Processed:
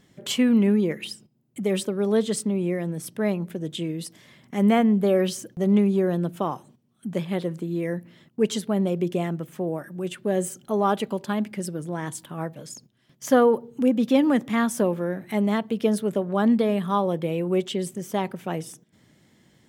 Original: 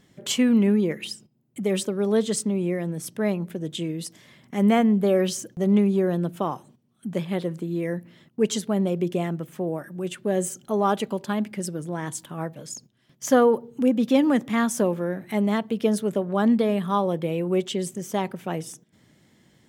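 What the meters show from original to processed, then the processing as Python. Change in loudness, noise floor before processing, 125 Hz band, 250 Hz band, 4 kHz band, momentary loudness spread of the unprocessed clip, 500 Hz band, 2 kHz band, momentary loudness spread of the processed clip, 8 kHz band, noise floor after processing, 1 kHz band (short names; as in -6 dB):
0.0 dB, -62 dBFS, 0.0 dB, 0.0 dB, -0.5 dB, 13 LU, 0.0 dB, 0.0 dB, 14 LU, -3.0 dB, -62 dBFS, 0.0 dB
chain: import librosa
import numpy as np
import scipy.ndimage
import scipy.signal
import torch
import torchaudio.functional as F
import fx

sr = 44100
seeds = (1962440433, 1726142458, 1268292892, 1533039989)

y = fx.dynamic_eq(x, sr, hz=6600.0, q=1.9, threshold_db=-47.0, ratio=4.0, max_db=-5)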